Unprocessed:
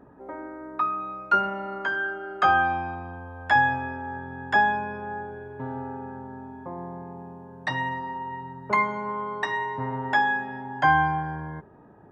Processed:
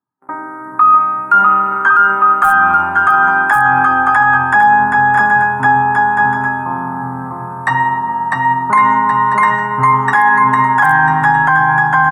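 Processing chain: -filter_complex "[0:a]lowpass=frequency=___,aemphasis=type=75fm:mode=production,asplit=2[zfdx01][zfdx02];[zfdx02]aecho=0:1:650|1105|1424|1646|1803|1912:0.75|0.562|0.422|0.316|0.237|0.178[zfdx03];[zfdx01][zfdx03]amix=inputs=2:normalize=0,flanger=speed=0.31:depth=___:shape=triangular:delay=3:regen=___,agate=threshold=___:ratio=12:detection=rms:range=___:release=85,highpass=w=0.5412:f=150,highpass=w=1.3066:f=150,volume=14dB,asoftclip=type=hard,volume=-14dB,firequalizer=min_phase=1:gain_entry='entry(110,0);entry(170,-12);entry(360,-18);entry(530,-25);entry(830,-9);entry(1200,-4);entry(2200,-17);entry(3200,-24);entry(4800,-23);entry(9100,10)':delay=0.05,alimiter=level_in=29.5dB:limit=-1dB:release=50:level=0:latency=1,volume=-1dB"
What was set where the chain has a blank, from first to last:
3300, 1.7, 85, -45dB, -44dB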